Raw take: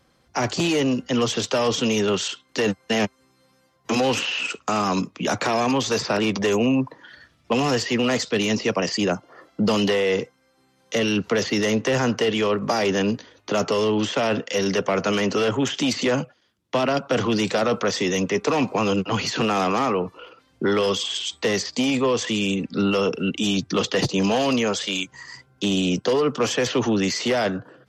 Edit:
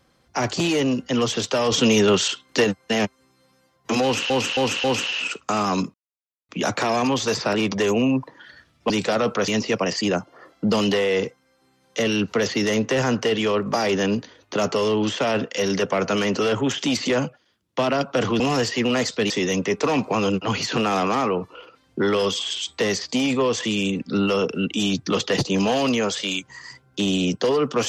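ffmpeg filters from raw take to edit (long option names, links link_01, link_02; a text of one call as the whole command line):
ffmpeg -i in.wav -filter_complex "[0:a]asplit=11[link_01][link_02][link_03][link_04][link_05][link_06][link_07][link_08][link_09][link_10][link_11];[link_01]atrim=end=1.722[link_12];[link_02]atrim=start=1.718:end=2.642,asetpts=PTS-STARTPTS,volume=4.5dB[link_13];[link_03]atrim=start=2.638:end=4.302[link_14];[link_04]atrim=start=4.028:end=4.302[link_15];[link_05]atrim=start=4.028:end=4.302[link_16];[link_06]atrim=start=4.028:end=5.13,asetpts=PTS-STARTPTS,afade=type=out:start_time=1.098:duration=0.004:curve=hsin,apad=pad_dur=0.55[link_17];[link_07]atrim=start=5.13:end=7.542,asetpts=PTS-STARTPTS,afade=type=in:duration=0.004:curve=hsin[link_18];[link_08]atrim=start=17.358:end=17.942[link_19];[link_09]atrim=start=8.438:end=17.362[link_20];[link_10]atrim=start=7.538:end=8.442[link_21];[link_11]atrim=start=17.938[link_22];[link_12][link_13]acrossfade=duration=0.004:curve1=hsin:curve2=hsin[link_23];[link_23][link_14]acrossfade=duration=0.004:curve1=hsin:curve2=hsin[link_24];[link_24][link_15]acrossfade=duration=0.004:curve1=hsin:curve2=hsin[link_25];[link_25][link_16]acrossfade=duration=0.004:curve1=hsin:curve2=hsin[link_26];[link_17][link_18]concat=n=2:v=0:a=1[link_27];[link_26][link_27]acrossfade=duration=0.004:curve1=hsin:curve2=hsin[link_28];[link_28][link_19]acrossfade=duration=0.004:curve1=hsin:curve2=hsin[link_29];[link_29][link_20]acrossfade=duration=0.004:curve1=hsin:curve2=hsin[link_30];[link_30][link_21]acrossfade=duration=0.004:curve1=hsin:curve2=hsin[link_31];[link_31][link_22]acrossfade=duration=0.004:curve1=hsin:curve2=hsin" out.wav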